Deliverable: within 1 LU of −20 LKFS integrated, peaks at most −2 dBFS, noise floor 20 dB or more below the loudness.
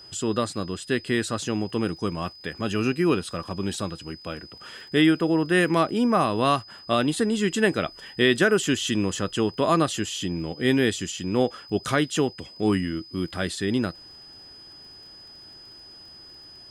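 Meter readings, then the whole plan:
crackle rate 21 per second; interfering tone 5,000 Hz; level of the tone −44 dBFS; integrated loudness −24.5 LKFS; sample peak −7.5 dBFS; target loudness −20.0 LKFS
→ click removal
notch filter 5,000 Hz, Q 30
level +4.5 dB

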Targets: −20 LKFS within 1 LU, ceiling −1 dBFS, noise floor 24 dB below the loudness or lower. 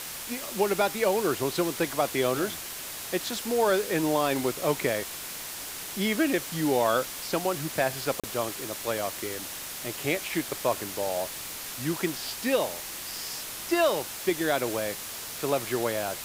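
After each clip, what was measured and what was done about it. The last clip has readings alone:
number of dropouts 1; longest dropout 36 ms; background noise floor −38 dBFS; target noise floor −53 dBFS; integrated loudness −28.5 LKFS; sample peak −12.5 dBFS; target loudness −20.0 LKFS
→ repair the gap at 0:08.20, 36 ms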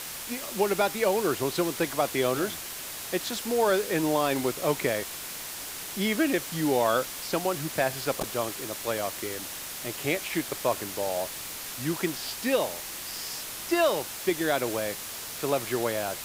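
number of dropouts 0; background noise floor −38 dBFS; target noise floor −53 dBFS
→ noise reduction from a noise print 15 dB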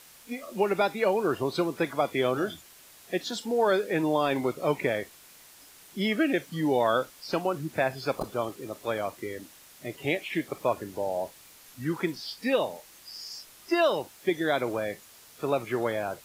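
background noise floor −53 dBFS; integrated loudness −29.0 LKFS; sample peak −13.0 dBFS; target loudness −20.0 LKFS
→ level +9 dB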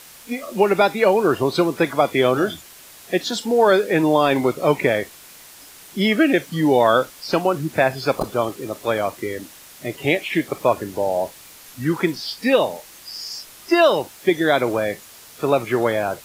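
integrated loudness −20.0 LKFS; sample peak −4.0 dBFS; background noise floor −44 dBFS

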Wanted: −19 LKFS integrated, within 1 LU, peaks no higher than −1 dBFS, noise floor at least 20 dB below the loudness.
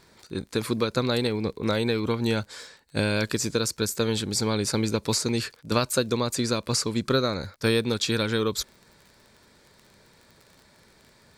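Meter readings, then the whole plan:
crackle rate 33 per second; integrated loudness −26.0 LKFS; sample peak −8.5 dBFS; target loudness −19.0 LKFS
→ click removal
level +7 dB

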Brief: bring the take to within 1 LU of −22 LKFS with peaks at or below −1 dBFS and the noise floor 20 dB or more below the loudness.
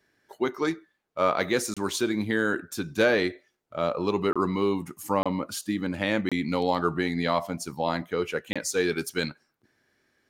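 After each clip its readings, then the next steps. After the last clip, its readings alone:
number of dropouts 5; longest dropout 26 ms; integrated loudness −27.5 LKFS; sample peak −8.0 dBFS; target loudness −22.0 LKFS
→ repair the gap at 0:01.74/0:04.33/0:05.23/0:06.29/0:08.53, 26 ms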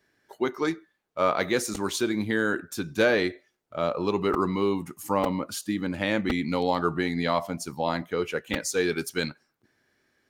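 number of dropouts 0; integrated loudness −27.5 LKFS; sample peak −8.0 dBFS; target loudness −22.0 LKFS
→ level +5.5 dB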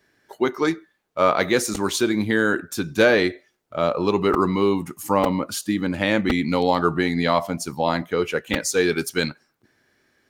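integrated loudness −22.0 LKFS; sample peak −2.5 dBFS; background noise floor −68 dBFS

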